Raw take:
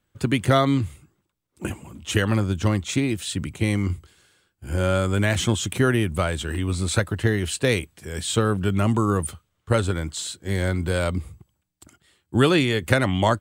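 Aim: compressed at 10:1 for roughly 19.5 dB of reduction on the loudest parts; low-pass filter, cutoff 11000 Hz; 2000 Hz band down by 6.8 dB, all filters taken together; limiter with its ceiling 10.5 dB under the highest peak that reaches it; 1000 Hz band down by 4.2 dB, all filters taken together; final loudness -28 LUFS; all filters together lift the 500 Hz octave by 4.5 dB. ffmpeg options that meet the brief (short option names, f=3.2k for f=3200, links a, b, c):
-af "lowpass=11k,equalizer=f=500:t=o:g=7.5,equalizer=f=1k:t=o:g=-6.5,equalizer=f=2k:t=o:g=-7,acompressor=threshold=-32dB:ratio=10,volume=12.5dB,alimiter=limit=-17.5dB:level=0:latency=1"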